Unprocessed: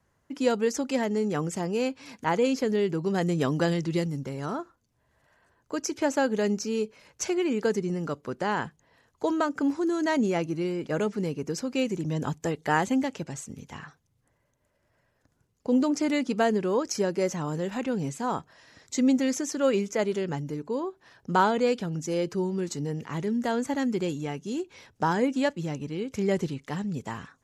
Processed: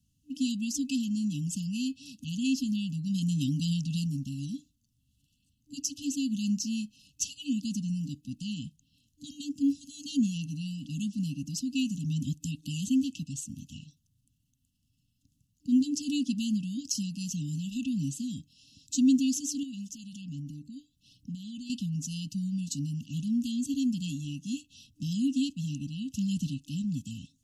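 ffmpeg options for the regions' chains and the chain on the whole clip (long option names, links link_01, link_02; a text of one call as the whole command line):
ffmpeg -i in.wav -filter_complex "[0:a]asettb=1/sr,asplit=3[link_01][link_02][link_03];[link_01]atrim=end=19.634[link_04];[link_02]atrim=start=19.63:end=21.7,asetpts=PTS-STARTPTS,afade=type=in:duration=0.004:curve=qsin,afade=type=out:start_time=2.066:duration=0.004:curve=qsin,aphaser=in_gain=1:out_gain=1:delay=1.5:decay=0.33:speed=1.2:type=sinusoidal,acompressor=threshold=-41dB:ratio=2:attack=3.2:release=140:knee=1:detection=peak[link_05];[link_03]atrim=start=21.696[link_06];[link_04][link_05]acrossfade=duration=0.004:curve1=hsin:curve2=qsin[link_07];[link_07][link_06]acrossfade=duration=0.004:curve1=qsin:curve2=hsin,afftfilt=real='re*(1-between(b*sr/4096,300,2600))':imag='im*(1-between(b*sr/4096,300,2600))':win_size=4096:overlap=0.75,highshelf=frequency=7700:gain=3.5" out.wav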